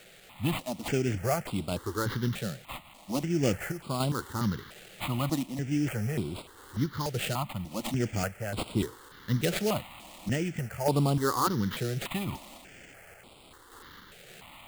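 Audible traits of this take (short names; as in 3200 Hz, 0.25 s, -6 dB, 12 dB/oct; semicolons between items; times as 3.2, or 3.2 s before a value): a quantiser's noise floor 8-bit, dither triangular; random-step tremolo; aliases and images of a low sample rate 5700 Hz, jitter 20%; notches that jump at a steady rate 3.4 Hz 270–6100 Hz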